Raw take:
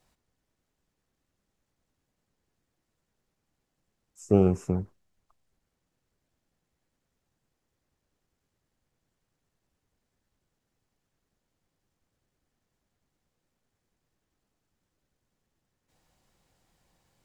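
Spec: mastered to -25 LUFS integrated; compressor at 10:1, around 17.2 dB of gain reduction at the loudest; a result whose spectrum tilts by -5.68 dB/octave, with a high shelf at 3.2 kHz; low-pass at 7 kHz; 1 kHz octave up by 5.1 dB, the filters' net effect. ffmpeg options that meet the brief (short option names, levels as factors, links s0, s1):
-af "lowpass=7000,equalizer=f=1000:t=o:g=8.5,highshelf=f=3200:g=-5.5,acompressor=threshold=0.0282:ratio=10,volume=5.62"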